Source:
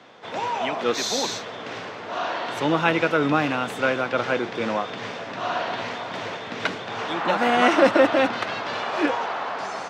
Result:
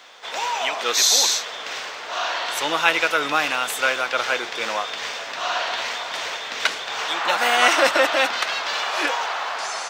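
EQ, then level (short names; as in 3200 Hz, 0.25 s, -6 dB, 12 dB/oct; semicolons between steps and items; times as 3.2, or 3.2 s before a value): RIAA curve recording; bell 200 Hz -10 dB 2.3 oct; +3.0 dB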